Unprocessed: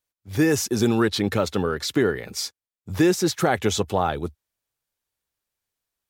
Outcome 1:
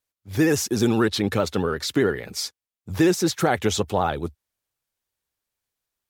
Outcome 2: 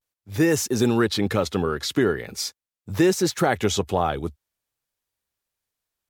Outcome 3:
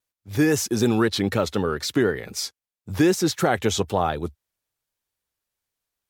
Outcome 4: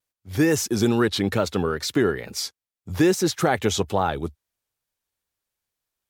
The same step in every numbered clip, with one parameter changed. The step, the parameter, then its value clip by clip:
pitch vibrato, speed: 15, 0.43, 3.9, 2.3 Hertz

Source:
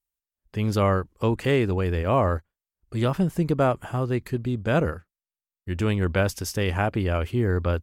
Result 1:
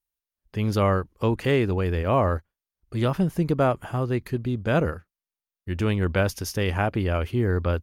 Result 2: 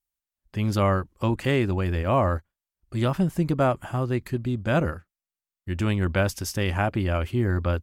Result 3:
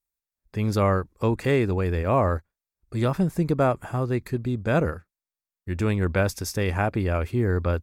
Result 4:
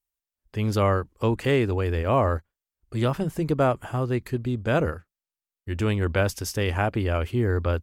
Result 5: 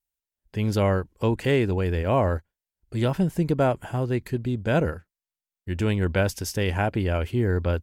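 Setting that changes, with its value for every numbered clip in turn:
notch filter, centre frequency: 7,700, 450, 3,000, 180, 1,200 Hertz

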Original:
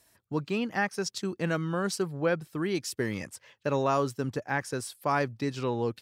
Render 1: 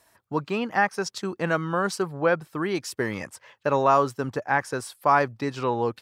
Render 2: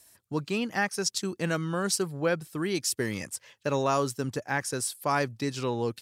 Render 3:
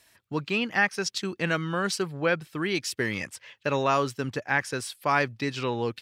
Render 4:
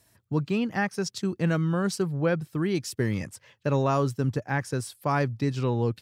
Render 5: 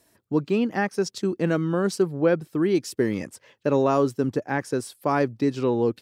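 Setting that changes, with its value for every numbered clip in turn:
parametric band, centre frequency: 990, 9,800, 2,600, 110, 320 Hertz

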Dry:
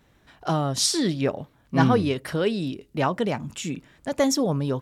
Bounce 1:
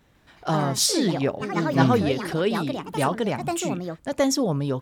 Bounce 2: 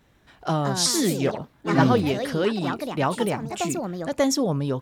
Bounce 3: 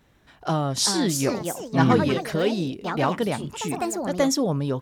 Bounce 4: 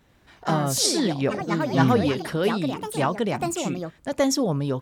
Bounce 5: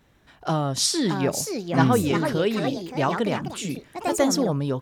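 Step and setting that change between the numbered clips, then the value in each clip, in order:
delay with pitch and tempo change per echo, delay time: 149, 277, 485, 93, 722 milliseconds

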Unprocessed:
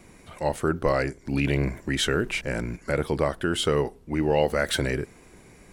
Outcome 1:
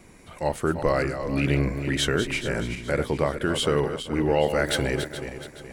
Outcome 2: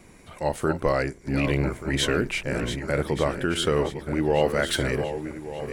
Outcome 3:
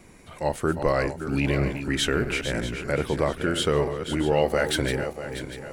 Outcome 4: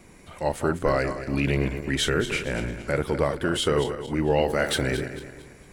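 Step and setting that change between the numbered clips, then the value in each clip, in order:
feedback delay that plays each chunk backwards, delay time: 212, 591, 321, 113 milliseconds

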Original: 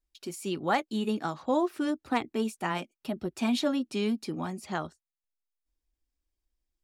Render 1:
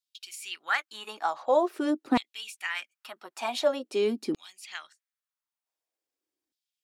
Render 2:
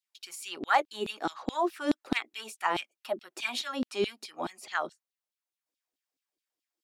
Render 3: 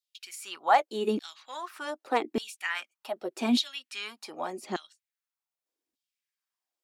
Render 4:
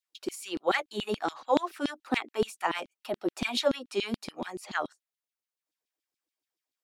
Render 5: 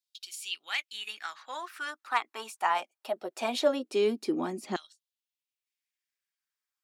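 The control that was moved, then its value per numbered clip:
auto-filter high-pass, speed: 0.46, 4.7, 0.84, 7, 0.21 Hertz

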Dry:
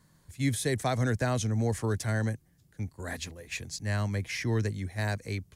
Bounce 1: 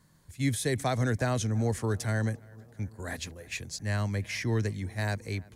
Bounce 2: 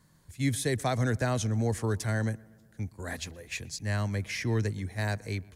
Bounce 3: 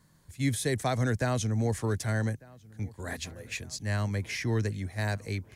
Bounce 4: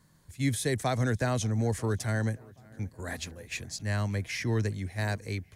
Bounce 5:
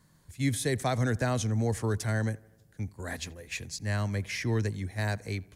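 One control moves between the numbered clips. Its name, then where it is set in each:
feedback echo with a low-pass in the loop, delay time: 342, 123, 1,199, 572, 84 milliseconds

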